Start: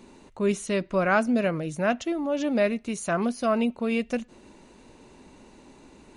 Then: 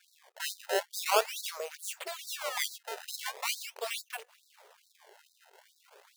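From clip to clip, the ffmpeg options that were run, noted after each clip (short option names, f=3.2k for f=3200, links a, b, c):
-af "aeval=exprs='if(lt(val(0),0),0.251*val(0),val(0))':c=same,acrusher=samples=22:mix=1:aa=0.000001:lfo=1:lforange=35.2:lforate=0.42,afftfilt=real='re*gte(b*sr/1024,360*pow(3800/360,0.5+0.5*sin(2*PI*2.3*pts/sr)))':imag='im*gte(b*sr/1024,360*pow(3800/360,0.5+0.5*sin(2*PI*2.3*pts/sr)))':win_size=1024:overlap=0.75,volume=1.5dB"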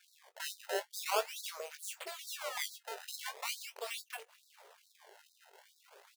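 -filter_complex "[0:a]asplit=2[a][b];[b]adelay=20,volume=-10.5dB[c];[a][c]amix=inputs=2:normalize=0,asplit=2[d][e];[e]acompressor=threshold=-43dB:ratio=6,volume=1dB[f];[d][f]amix=inputs=2:normalize=0,volume=-8dB"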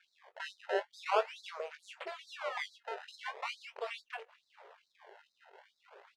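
-af "lowpass=2.4k,volume=3.5dB"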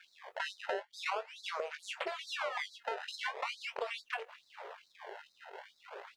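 -af "acompressor=threshold=-43dB:ratio=16,volume=9.5dB"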